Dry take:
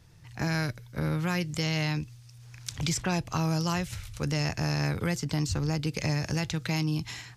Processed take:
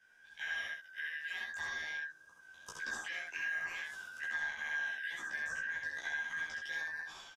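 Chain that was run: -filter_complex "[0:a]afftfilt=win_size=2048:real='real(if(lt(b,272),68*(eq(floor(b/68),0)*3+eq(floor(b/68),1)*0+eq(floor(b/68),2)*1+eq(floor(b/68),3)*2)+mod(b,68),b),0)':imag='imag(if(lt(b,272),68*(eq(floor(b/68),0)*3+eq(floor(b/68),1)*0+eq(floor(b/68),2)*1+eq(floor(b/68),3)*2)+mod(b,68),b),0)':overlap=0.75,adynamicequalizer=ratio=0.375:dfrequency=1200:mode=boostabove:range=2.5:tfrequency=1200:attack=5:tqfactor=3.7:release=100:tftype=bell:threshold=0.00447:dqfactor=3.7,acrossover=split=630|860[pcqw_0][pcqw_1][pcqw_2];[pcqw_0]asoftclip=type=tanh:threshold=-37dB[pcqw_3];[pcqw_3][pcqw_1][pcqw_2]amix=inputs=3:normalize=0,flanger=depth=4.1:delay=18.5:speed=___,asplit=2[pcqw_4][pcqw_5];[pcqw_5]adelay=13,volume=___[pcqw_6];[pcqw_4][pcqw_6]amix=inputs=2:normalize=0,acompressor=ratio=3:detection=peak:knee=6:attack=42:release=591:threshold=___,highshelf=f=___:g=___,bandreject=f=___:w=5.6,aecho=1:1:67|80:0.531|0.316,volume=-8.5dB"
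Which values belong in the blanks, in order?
2.5, -2dB, -32dB, 7.5k, -6.5, 4.2k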